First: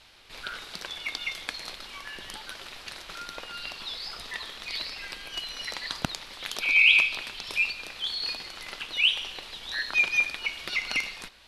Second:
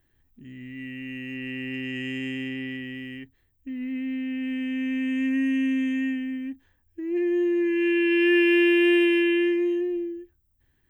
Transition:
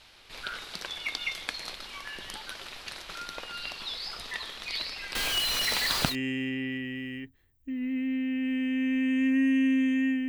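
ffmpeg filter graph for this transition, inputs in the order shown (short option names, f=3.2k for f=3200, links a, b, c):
-filter_complex "[0:a]asettb=1/sr,asplit=3[a][b][c];[a]atrim=end=5.154[d];[b]atrim=start=5.15:end=6.16,asetpts=PTS-STARTPTS,afade=t=in:d=0.004:c=qsin,afade=t=out:st=1.006:d=0.004:c=qsin,aeval=exprs='val(0)+0.5*0.0531*sgn(val(0))':c=same[e];[c]atrim=start=6.156[f];[d][e]acrossfade=d=0.004:c1=hsin:c2=qsin[g];[g][f]acrossfade=d=0.004:c1=qsin:c2=hsin,apad=whole_dur=10.28,atrim=end=10.28,atrim=end=6.16,asetpts=PTS-STARTPTS[h];[1:a]atrim=start=2.07:end=6.27,asetpts=PTS-STARTPTS[i];[h][i]acrossfade=d=0.08:c1=tri:c2=tri"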